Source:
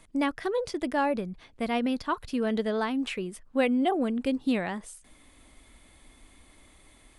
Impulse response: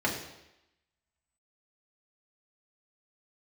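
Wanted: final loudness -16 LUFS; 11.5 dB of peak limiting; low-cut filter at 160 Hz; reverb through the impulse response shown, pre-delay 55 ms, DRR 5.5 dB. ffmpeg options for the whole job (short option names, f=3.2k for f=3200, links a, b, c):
-filter_complex "[0:a]highpass=160,alimiter=level_in=1dB:limit=-24dB:level=0:latency=1,volume=-1dB,asplit=2[a][b];[1:a]atrim=start_sample=2205,adelay=55[c];[b][c]afir=irnorm=-1:irlink=0,volume=-16dB[d];[a][d]amix=inputs=2:normalize=0,volume=16dB"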